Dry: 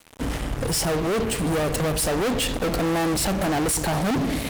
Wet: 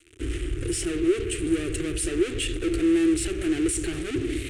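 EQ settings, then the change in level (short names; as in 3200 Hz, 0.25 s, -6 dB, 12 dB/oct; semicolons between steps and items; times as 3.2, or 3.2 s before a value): EQ curve 110 Hz 0 dB, 210 Hz -26 dB, 350 Hz +10 dB, 530 Hz -18 dB, 940 Hz -29 dB, 1300 Hz -11 dB, 2700 Hz -1 dB, 4900 Hz -12 dB, 9000 Hz -1 dB, 14000 Hz -26 dB; 0.0 dB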